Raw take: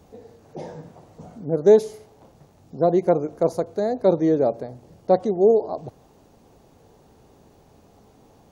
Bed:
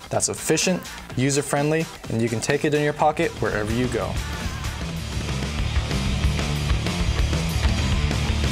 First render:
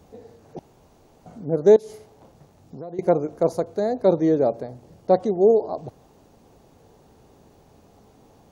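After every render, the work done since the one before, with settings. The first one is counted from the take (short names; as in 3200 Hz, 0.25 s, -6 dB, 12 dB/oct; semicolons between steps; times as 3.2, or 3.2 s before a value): 0.59–1.26 room tone; 1.76–2.99 compressor, threshold -33 dBFS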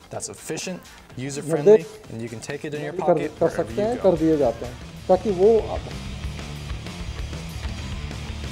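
add bed -9.5 dB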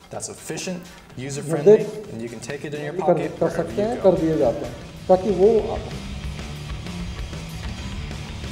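shoebox room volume 3100 m³, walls furnished, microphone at 1.1 m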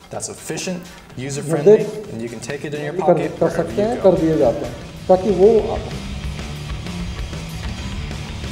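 gain +4 dB; limiter -1 dBFS, peak gain reduction 2.5 dB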